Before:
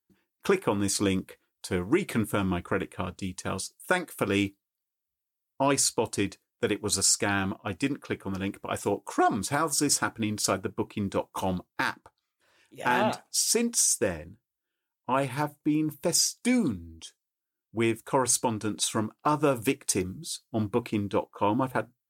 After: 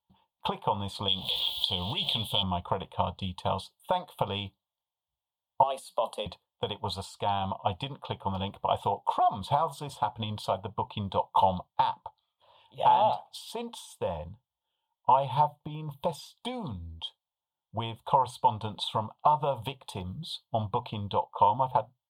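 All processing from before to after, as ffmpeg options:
ffmpeg -i in.wav -filter_complex "[0:a]asettb=1/sr,asplit=3[link_01][link_02][link_03];[link_01]atrim=end=1.084[link_04];[link_02]atrim=start=1.08:end=2.43,asetpts=PTS-STARTPTS,afade=type=in:duration=0.004:curve=qsin,afade=type=out:start_time=1.346:duration=0.004:curve=qsin,aeval=exprs='val(0)+0.5*0.0112*sgn(val(0))':channel_layout=same,highshelf=frequency=2300:width_type=q:width=3:gain=13,acompressor=threshold=-28dB:ratio=2:attack=3.2:release=140:knee=1:detection=peak[link_05];[link_03]atrim=start=2.426[link_06];[link_04][link_05]acrossfade=duration=0.004:curve1=hsin:curve2=qsin[link_07];[link_07][link_06]acrossfade=duration=0.004:curve1=qsin:curve2=hsin,asettb=1/sr,asplit=3[link_08][link_09][link_10];[link_08]atrim=end=5.634[link_11];[link_09]atrim=start=5.63:end=6.26,asetpts=PTS-STARTPTS,afade=type=in:duration=0.004:curve=qsin,afade=type=out:start_time=0.626:duration=0.004:curve=qsin,equalizer=frequency=11000:width=0.95:gain=14.5,acompressor=threshold=-33dB:ratio=2.5:attack=3.2:release=140:knee=1:detection=peak,afreqshift=120[link_12];[link_10]atrim=start=6.256[link_13];[link_11][link_12]acrossfade=duration=0.004:curve1=hsin:curve2=qsin[link_14];[link_14][link_13]acrossfade=duration=0.004:curve1=qsin:curve2=hsin,acompressor=threshold=-30dB:ratio=6,firequalizer=gain_entry='entry(150,0);entry(310,-20);entry(550,3);entry(900,11);entry(1500,-16);entry(2100,-16);entry(3300,7);entry(5600,-27);entry(9700,-19);entry(15000,-16)':delay=0.05:min_phase=1,volume=5dB" out.wav

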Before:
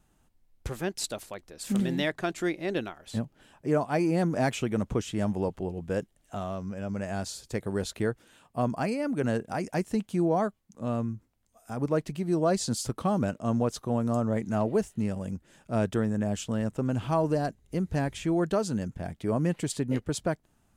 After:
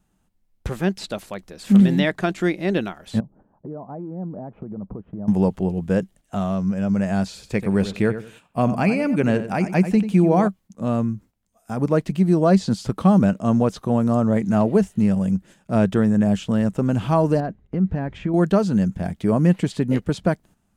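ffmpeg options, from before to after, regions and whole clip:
ffmpeg -i in.wav -filter_complex "[0:a]asettb=1/sr,asplit=3[link_01][link_02][link_03];[link_01]atrim=end=3.204[link_04];[link_02]atrim=start=3.2:end=5.28,asetpts=PTS-STARTPTS,afade=type=in:duration=0.004:curve=qsin,afade=type=out:start_time=2.076:duration=0.004:curve=qsin,lowpass=frequency=1000:width=0.5412,lowpass=frequency=1000:width=1.3066,acompressor=threshold=-41dB:ratio=4:attack=3.2:release=140:knee=1:detection=peak[link_05];[link_03]atrim=start=5.276[link_06];[link_04][link_05]acrossfade=duration=0.004:curve1=hsin:curve2=qsin[link_07];[link_07][link_06]acrossfade=duration=0.004:curve1=qsin:curve2=hsin,asettb=1/sr,asplit=3[link_08][link_09][link_10];[link_08]atrim=end=7.274[link_11];[link_09]atrim=start=7.27:end=10.48,asetpts=PTS-STARTPTS,afade=type=in:duration=0.004:curve=qsin,afade=type=out:start_time=3.206:duration=0.004:curve=qsin,equalizer=frequency=2400:width_type=o:width=0.32:gain=8.5,asplit=2[link_12][link_13];[link_13]adelay=90,lowpass=frequency=2700:poles=1,volume=-11dB,asplit=2[link_14][link_15];[link_15]adelay=90,lowpass=frequency=2700:poles=1,volume=0.26,asplit=2[link_16][link_17];[link_17]adelay=90,lowpass=frequency=2700:poles=1,volume=0.26[link_18];[link_12][link_14][link_16][link_18]amix=inputs=4:normalize=0,atrim=end_sample=141561[link_19];[link_10]atrim=start=10.476[link_20];[link_11][link_19]acrossfade=duration=0.004:curve1=hsin:curve2=qsin[link_21];[link_21][link_20]acrossfade=duration=0.004:curve1=qsin:curve2=hsin,asettb=1/sr,asplit=3[link_22][link_23][link_24];[link_22]atrim=end=17.404[link_25];[link_23]atrim=start=17.4:end=18.34,asetpts=PTS-STARTPTS,afade=type=in:duration=0.004:curve=qsin,afade=type=out:start_time=0.936:duration=0.004:curve=qsin,lowpass=2000,acompressor=threshold=-28dB:ratio=6:attack=3.2:release=140:knee=1:detection=peak[link_26];[link_24]atrim=start=18.336[link_27];[link_25][link_26]acrossfade=duration=0.004:curve1=hsin:curve2=qsin[link_28];[link_28][link_27]acrossfade=duration=0.004:curve1=qsin:curve2=hsin,agate=range=-9dB:threshold=-53dB:ratio=16:detection=peak,acrossover=split=4100[link_29][link_30];[link_30]acompressor=threshold=-51dB:ratio=4:attack=1:release=60[link_31];[link_29][link_31]amix=inputs=2:normalize=0,equalizer=frequency=190:width_type=o:width=0.32:gain=9,volume=7dB" out.wav

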